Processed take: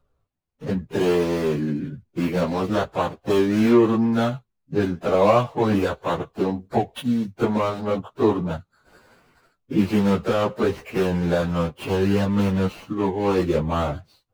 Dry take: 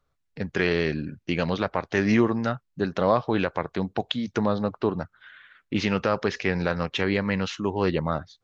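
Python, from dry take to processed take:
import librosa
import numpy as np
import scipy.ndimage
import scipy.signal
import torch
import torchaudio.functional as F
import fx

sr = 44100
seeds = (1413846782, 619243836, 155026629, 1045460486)

y = scipy.signal.medfilt(x, 25)
y = fx.stretch_vocoder_free(y, sr, factor=1.7)
y = F.gain(torch.from_numpy(y), 8.0).numpy()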